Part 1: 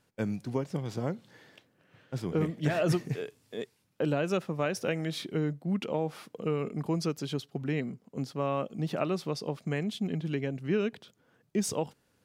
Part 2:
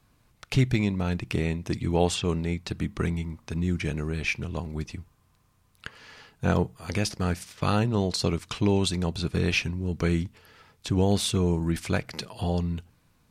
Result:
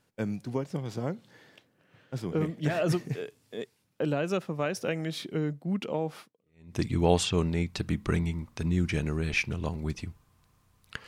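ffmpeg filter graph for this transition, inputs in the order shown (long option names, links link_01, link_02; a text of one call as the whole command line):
ffmpeg -i cue0.wav -i cue1.wav -filter_complex "[0:a]apad=whole_dur=11.07,atrim=end=11.07,atrim=end=6.76,asetpts=PTS-STARTPTS[link_01];[1:a]atrim=start=1.11:end=5.98,asetpts=PTS-STARTPTS[link_02];[link_01][link_02]acrossfade=duration=0.56:curve1=exp:curve2=exp" out.wav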